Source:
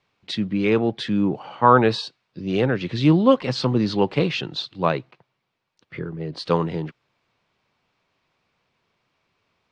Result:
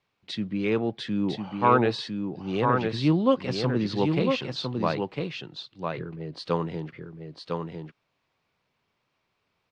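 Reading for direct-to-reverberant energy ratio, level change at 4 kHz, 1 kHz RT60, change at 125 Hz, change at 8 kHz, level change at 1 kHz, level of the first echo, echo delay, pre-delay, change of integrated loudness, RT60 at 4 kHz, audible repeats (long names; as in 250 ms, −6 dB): no reverb audible, −4.5 dB, no reverb audible, −4.5 dB, can't be measured, −4.5 dB, −4.5 dB, 1,003 ms, no reverb audible, −5.5 dB, no reverb audible, 1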